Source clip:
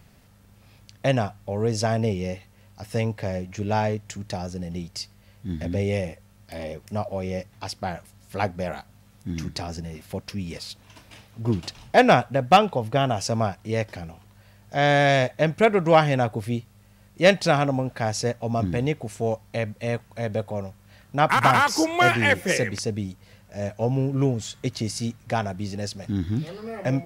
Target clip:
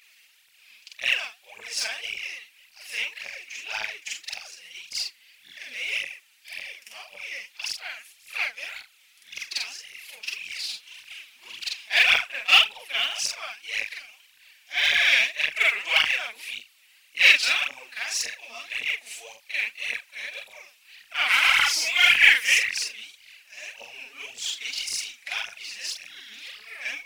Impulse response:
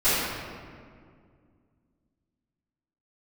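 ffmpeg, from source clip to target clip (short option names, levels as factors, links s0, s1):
-af "afftfilt=real='re':imag='-im':win_size=4096:overlap=0.75,highpass=f=2500:t=q:w=3.1,aphaser=in_gain=1:out_gain=1:delay=4.8:decay=0.71:speed=1.8:type=triangular,volume=1.58"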